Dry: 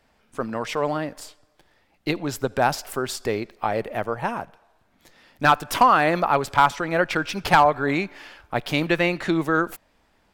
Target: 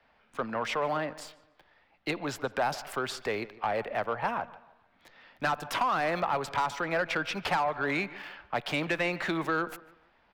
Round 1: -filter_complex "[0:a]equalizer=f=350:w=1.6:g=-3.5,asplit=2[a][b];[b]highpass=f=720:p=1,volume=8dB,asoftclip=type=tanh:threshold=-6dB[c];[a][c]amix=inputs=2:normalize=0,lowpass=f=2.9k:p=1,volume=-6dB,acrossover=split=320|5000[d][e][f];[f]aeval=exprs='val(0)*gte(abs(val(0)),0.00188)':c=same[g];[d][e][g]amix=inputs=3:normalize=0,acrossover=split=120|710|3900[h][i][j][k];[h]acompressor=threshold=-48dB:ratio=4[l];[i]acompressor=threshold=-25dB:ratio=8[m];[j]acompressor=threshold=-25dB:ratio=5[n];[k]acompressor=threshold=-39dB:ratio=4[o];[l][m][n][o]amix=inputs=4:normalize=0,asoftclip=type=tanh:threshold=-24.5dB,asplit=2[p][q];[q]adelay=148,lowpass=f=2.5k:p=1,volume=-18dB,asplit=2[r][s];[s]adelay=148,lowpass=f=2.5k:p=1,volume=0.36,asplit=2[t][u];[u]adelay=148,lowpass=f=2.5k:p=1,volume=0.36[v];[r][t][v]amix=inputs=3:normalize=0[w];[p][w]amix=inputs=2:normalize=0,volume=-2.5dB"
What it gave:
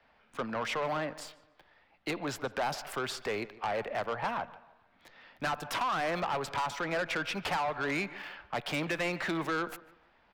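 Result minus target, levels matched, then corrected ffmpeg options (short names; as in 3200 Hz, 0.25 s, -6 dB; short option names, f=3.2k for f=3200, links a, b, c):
soft clip: distortion +8 dB
-filter_complex "[0:a]equalizer=f=350:w=1.6:g=-3.5,asplit=2[a][b];[b]highpass=f=720:p=1,volume=8dB,asoftclip=type=tanh:threshold=-6dB[c];[a][c]amix=inputs=2:normalize=0,lowpass=f=2.9k:p=1,volume=-6dB,acrossover=split=320|5000[d][e][f];[f]aeval=exprs='val(0)*gte(abs(val(0)),0.00188)':c=same[g];[d][e][g]amix=inputs=3:normalize=0,acrossover=split=120|710|3900[h][i][j][k];[h]acompressor=threshold=-48dB:ratio=4[l];[i]acompressor=threshold=-25dB:ratio=8[m];[j]acompressor=threshold=-25dB:ratio=5[n];[k]acompressor=threshold=-39dB:ratio=4[o];[l][m][n][o]amix=inputs=4:normalize=0,asoftclip=type=tanh:threshold=-17dB,asplit=2[p][q];[q]adelay=148,lowpass=f=2.5k:p=1,volume=-18dB,asplit=2[r][s];[s]adelay=148,lowpass=f=2.5k:p=1,volume=0.36,asplit=2[t][u];[u]adelay=148,lowpass=f=2.5k:p=1,volume=0.36[v];[r][t][v]amix=inputs=3:normalize=0[w];[p][w]amix=inputs=2:normalize=0,volume=-2.5dB"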